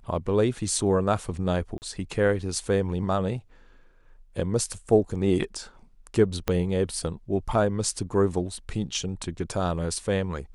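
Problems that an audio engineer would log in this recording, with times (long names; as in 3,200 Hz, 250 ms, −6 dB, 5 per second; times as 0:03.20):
0:01.78–0:01.82: drop-out 39 ms
0:06.48: click −10 dBFS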